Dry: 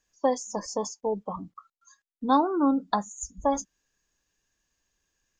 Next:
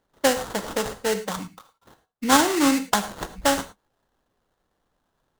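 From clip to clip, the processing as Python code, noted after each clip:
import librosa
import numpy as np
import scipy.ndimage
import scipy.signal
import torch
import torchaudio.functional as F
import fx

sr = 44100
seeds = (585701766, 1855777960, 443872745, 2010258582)

y = fx.sample_hold(x, sr, seeds[0], rate_hz=2400.0, jitter_pct=20)
y = fx.dynamic_eq(y, sr, hz=7500.0, q=1.2, threshold_db=-49.0, ratio=4.0, max_db=6)
y = fx.rev_gated(y, sr, seeds[1], gate_ms=130, shape='flat', drr_db=10.0)
y = y * librosa.db_to_amplitude(3.5)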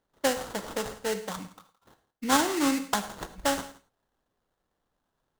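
y = x + 10.0 ** (-20.0 / 20.0) * np.pad(x, (int(167 * sr / 1000.0), 0))[:len(x)]
y = y * librosa.db_to_amplitude(-6.0)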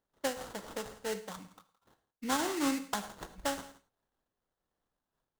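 y = fx.am_noise(x, sr, seeds[2], hz=5.7, depth_pct=55)
y = y * librosa.db_to_amplitude(-4.5)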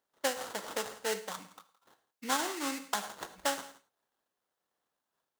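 y = fx.rider(x, sr, range_db=4, speed_s=0.5)
y = fx.highpass(y, sr, hz=560.0, slope=6)
y = y * librosa.db_to_amplitude(3.0)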